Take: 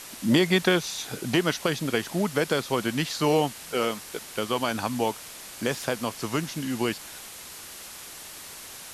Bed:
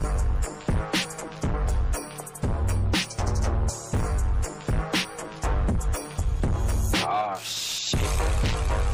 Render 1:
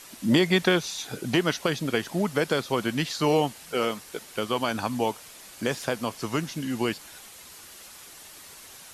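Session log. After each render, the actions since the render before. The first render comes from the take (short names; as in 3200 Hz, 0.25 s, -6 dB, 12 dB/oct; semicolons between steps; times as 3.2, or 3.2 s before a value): denoiser 6 dB, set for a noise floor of -43 dBFS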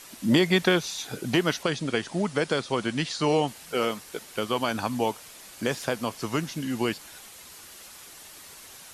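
1.63–3.48 elliptic low-pass 9900 Hz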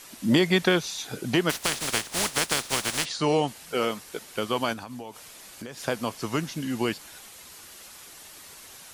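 1.49–3.04 spectral contrast lowered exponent 0.26; 4.73–5.84 compressor 12:1, threshold -34 dBFS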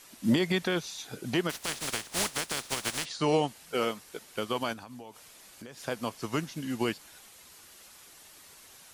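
limiter -15 dBFS, peak gain reduction 8 dB; upward expander 1.5:1, over -34 dBFS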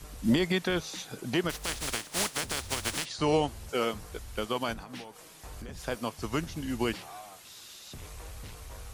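add bed -20.5 dB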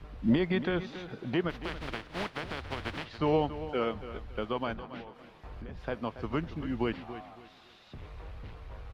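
air absorption 360 m; feedback echo 0.28 s, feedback 29%, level -13 dB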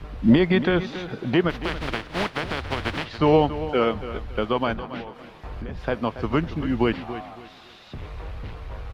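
gain +9.5 dB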